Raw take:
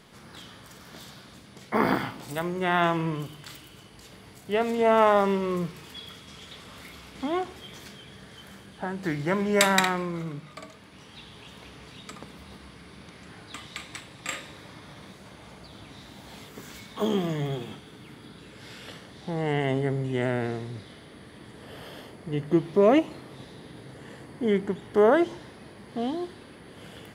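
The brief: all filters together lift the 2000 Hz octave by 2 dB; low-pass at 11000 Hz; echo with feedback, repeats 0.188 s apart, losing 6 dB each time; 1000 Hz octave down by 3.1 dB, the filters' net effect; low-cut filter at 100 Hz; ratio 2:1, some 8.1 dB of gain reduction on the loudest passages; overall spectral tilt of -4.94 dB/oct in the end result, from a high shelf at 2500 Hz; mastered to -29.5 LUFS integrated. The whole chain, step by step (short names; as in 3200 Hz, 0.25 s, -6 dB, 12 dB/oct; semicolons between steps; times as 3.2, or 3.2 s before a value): HPF 100 Hz; LPF 11000 Hz; bell 1000 Hz -4.5 dB; bell 2000 Hz +7.5 dB; high shelf 2500 Hz -9 dB; compressor 2:1, threshold -31 dBFS; feedback echo 0.188 s, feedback 50%, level -6 dB; gain +4.5 dB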